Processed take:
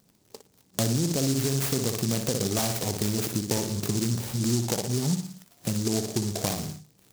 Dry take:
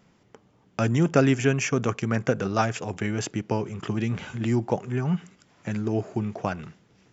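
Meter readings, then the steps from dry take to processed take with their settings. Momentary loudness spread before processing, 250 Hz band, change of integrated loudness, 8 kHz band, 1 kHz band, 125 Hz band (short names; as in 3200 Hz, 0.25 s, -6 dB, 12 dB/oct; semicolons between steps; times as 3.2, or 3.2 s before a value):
10 LU, -2.0 dB, -1.0 dB, n/a, -7.0 dB, -1.0 dB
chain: notch 1400 Hz, Q 5.2; flutter echo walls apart 10.1 m, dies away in 0.48 s; crackle 76/s -38 dBFS; limiter -14.5 dBFS, peak gain reduction 9 dB; spectral noise reduction 11 dB; compressor 2.5:1, threshold -33 dBFS, peak gain reduction 9.5 dB; noise-modulated delay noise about 5900 Hz, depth 0.21 ms; gain +6.5 dB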